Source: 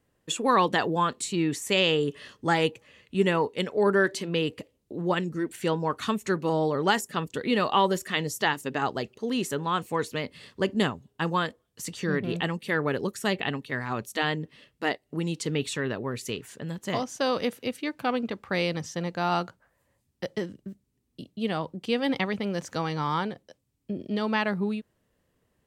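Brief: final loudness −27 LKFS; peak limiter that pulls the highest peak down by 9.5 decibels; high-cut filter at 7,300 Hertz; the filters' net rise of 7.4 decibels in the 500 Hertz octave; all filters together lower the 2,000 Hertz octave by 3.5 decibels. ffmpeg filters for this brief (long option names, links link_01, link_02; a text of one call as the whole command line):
ffmpeg -i in.wav -af "lowpass=7300,equalizer=frequency=500:width_type=o:gain=9,equalizer=frequency=2000:width_type=o:gain=-5,alimiter=limit=-15dB:level=0:latency=1" out.wav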